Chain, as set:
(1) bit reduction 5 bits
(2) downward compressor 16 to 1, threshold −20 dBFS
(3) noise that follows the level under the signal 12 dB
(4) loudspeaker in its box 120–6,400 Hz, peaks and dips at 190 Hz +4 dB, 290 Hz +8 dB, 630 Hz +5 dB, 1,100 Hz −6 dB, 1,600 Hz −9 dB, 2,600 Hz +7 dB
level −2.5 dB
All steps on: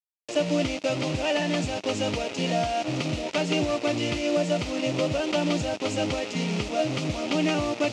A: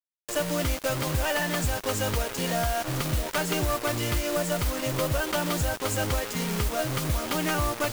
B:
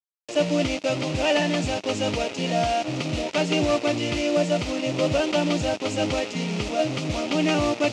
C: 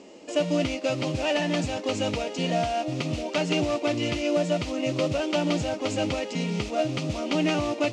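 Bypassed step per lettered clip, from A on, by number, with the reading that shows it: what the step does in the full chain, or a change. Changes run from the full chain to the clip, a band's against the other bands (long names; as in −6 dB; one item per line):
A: 4, change in crest factor −1.5 dB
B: 2, average gain reduction 2.0 dB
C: 1, distortion level −12 dB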